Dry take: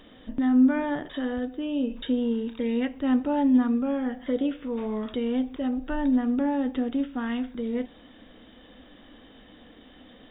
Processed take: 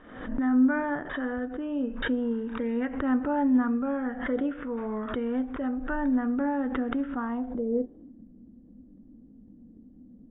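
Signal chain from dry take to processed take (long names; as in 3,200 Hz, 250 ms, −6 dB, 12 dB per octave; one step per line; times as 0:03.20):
low-pass filter sweep 1,500 Hz → 220 Hz, 0:07.09–0:08.22
background raised ahead of every attack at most 73 dB per second
level −3 dB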